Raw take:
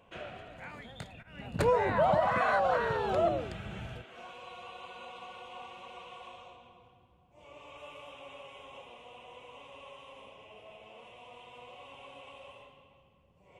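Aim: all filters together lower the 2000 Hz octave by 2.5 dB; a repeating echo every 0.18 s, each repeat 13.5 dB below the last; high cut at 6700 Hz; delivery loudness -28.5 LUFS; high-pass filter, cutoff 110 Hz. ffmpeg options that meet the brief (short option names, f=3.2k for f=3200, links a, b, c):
-af "highpass=110,lowpass=6.7k,equalizer=f=2k:t=o:g=-3.5,aecho=1:1:180|360:0.211|0.0444,volume=1.5dB"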